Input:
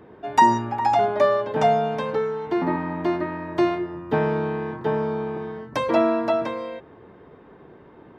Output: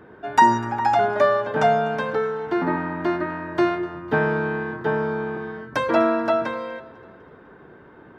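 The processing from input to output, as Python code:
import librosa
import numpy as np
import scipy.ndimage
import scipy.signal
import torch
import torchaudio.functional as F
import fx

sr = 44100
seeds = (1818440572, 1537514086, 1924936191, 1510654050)

y = fx.peak_eq(x, sr, hz=1500.0, db=10.0, octaves=0.37)
y = fx.echo_feedback(y, sr, ms=250, feedback_pct=48, wet_db=-20.5)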